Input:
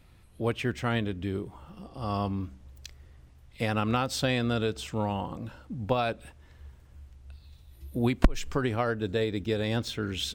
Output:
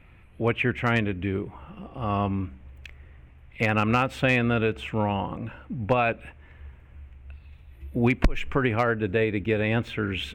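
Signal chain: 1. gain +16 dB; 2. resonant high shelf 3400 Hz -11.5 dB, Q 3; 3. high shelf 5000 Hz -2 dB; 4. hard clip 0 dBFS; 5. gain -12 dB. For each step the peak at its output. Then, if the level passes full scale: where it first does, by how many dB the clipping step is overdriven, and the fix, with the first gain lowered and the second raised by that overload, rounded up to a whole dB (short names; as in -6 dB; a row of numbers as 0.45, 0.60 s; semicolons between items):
+7.0, +10.0, +10.0, 0.0, -12.0 dBFS; step 1, 10.0 dB; step 1 +6 dB, step 5 -2 dB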